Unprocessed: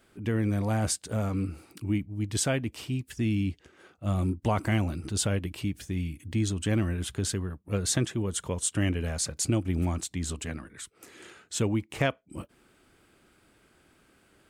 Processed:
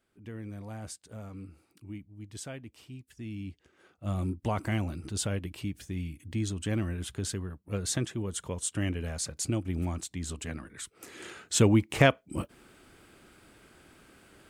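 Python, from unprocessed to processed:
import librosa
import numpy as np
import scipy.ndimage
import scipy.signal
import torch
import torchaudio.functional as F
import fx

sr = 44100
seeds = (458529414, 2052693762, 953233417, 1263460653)

y = fx.gain(x, sr, db=fx.line((3.16, -14.0), (4.07, -4.0), (10.26, -4.0), (11.39, 5.5)))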